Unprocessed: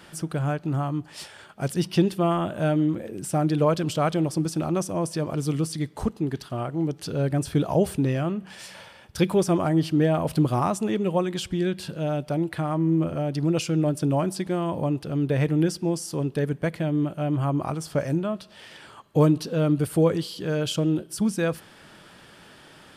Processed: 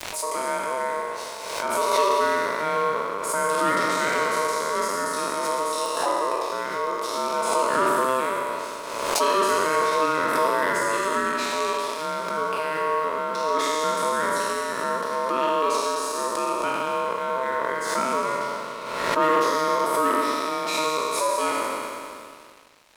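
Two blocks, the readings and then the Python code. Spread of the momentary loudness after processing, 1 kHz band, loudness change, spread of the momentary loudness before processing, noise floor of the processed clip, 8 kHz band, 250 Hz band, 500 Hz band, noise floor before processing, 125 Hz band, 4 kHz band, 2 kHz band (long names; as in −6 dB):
7 LU, +11.0 dB, +1.0 dB, 8 LU, −35 dBFS, +7.0 dB, −10.0 dB, +2.0 dB, −50 dBFS, −21.5 dB, +5.5 dB, +11.0 dB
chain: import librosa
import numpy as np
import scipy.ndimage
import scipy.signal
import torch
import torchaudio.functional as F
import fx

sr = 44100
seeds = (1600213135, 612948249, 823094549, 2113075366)

y = fx.spec_trails(x, sr, decay_s=2.91)
y = y * np.sin(2.0 * np.pi * 780.0 * np.arange(len(y)) / sr)
y = fx.room_flutter(y, sr, wall_m=7.6, rt60_s=0.23)
y = np.clip(10.0 ** (12.5 / 20.0) * y, -1.0, 1.0) / 10.0 ** (12.5 / 20.0)
y = scipy.signal.sosfilt(scipy.signal.butter(2, 320.0, 'highpass', fs=sr, output='sos'), y)
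y = np.sign(y) * np.maximum(np.abs(y) - 10.0 ** (-46.0 / 20.0), 0.0)
y = fx.pre_swell(y, sr, db_per_s=40.0)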